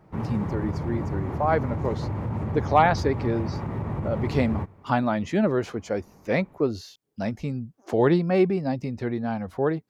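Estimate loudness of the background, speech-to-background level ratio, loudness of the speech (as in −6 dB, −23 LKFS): −30.5 LKFS, 4.5 dB, −26.0 LKFS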